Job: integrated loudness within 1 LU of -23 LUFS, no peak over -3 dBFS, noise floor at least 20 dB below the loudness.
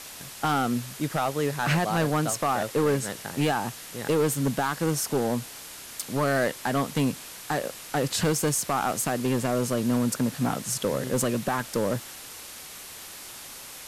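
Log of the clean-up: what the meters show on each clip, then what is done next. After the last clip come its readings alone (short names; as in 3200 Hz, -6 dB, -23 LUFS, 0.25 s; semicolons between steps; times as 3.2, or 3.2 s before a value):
clipped 1.5%; flat tops at -18.0 dBFS; noise floor -42 dBFS; noise floor target -47 dBFS; loudness -26.5 LUFS; peak -18.0 dBFS; loudness target -23.0 LUFS
-> clip repair -18 dBFS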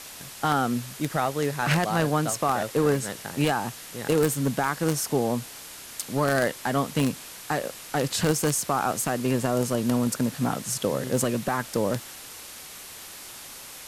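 clipped 0.0%; noise floor -42 dBFS; noise floor target -46 dBFS
-> denoiser 6 dB, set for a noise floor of -42 dBFS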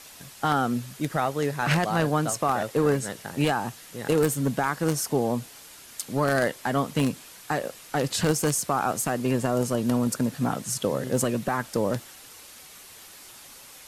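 noise floor -47 dBFS; loudness -26.0 LUFS; peak -9.0 dBFS; loudness target -23.0 LUFS
-> gain +3 dB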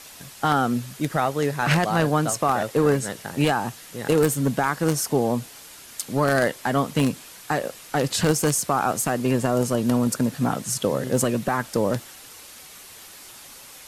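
loudness -23.0 LUFS; peak -6.0 dBFS; noise floor -44 dBFS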